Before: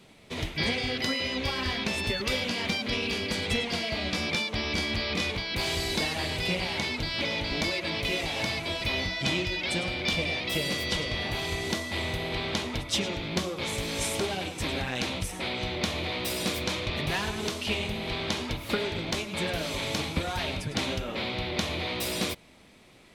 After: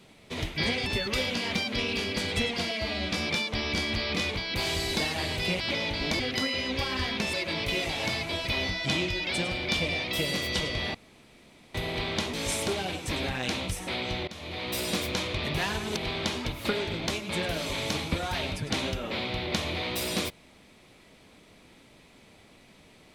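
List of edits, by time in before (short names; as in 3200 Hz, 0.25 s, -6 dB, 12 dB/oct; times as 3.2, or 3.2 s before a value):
0.86–2 move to 7.7
3.85–4.12 stretch 1.5×
6.61–7.11 cut
11.31–12.11 room tone
12.7–13.86 cut
15.8–16.29 fade in, from -19.5 dB
17.49–18.01 cut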